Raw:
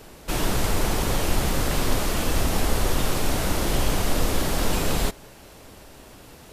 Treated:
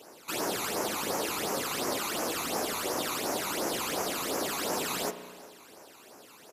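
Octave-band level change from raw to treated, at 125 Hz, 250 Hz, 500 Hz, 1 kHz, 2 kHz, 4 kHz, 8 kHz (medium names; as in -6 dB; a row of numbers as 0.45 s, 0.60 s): -20.5 dB, -8.5 dB, -4.5 dB, -4.0 dB, -5.0 dB, -4.5 dB, -3.5 dB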